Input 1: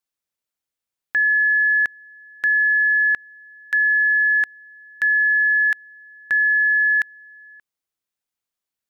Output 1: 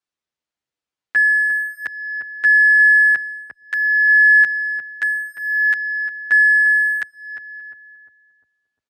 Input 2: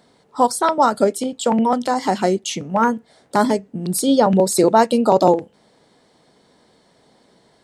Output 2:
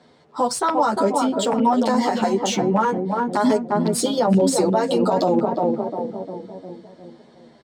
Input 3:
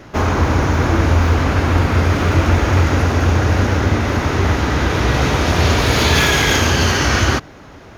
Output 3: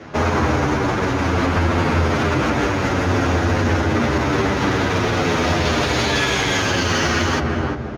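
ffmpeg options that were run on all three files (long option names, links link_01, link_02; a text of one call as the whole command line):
ffmpeg -i in.wav -filter_complex "[0:a]lowpass=11000,acrossover=split=100|2300[link_01][link_02][link_03];[link_01]acompressor=threshold=-29dB:ratio=6[link_04];[link_04][link_02][link_03]amix=inputs=3:normalize=0,highpass=frequency=54:poles=1,asplit=2[link_05][link_06];[link_06]adelay=352,lowpass=frequency=910:poles=1,volume=-6dB,asplit=2[link_07][link_08];[link_08]adelay=352,lowpass=frequency=910:poles=1,volume=0.54,asplit=2[link_09][link_10];[link_10]adelay=352,lowpass=frequency=910:poles=1,volume=0.54,asplit=2[link_11][link_12];[link_12]adelay=352,lowpass=frequency=910:poles=1,volume=0.54,asplit=2[link_13][link_14];[link_14]adelay=352,lowpass=frequency=910:poles=1,volume=0.54,asplit=2[link_15][link_16];[link_16]adelay=352,lowpass=frequency=910:poles=1,volume=0.54,asplit=2[link_17][link_18];[link_18]adelay=352,lowpass=frequency=910:poles=1,volume=0.54[link_19];[link_07][link_09][link_11][link_13][link_15][link_17][link_19]amix=inputs=7:normalize=0[link_20];[link_05][link_20]amix=inputs=2:normalize=0,adynamicsmooth=sensitivity=6:basefreq=6700,alimiter=level_in=11.5dB:limit=-1dB:release=50:level=0:latency=1,asplit=2[link_21][link_22];[link_22]adelay=9.2,afreqshift=-0.56[link_23];[link_21][link_23]amix=inputs=2:normalize=1,volume=-6dB" out.wav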